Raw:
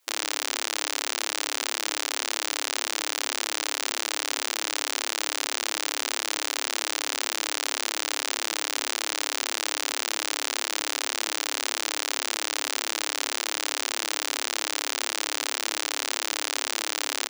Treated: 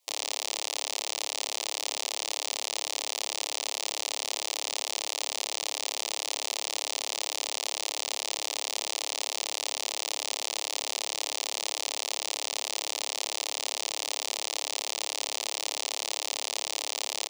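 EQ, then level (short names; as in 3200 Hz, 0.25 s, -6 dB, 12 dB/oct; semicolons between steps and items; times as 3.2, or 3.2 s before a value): low shelf 230 Hz -11.5 dB; high shelf 9900 Hz -8 dB; fixed phaser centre 620 Hz, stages 4; 0.0 dB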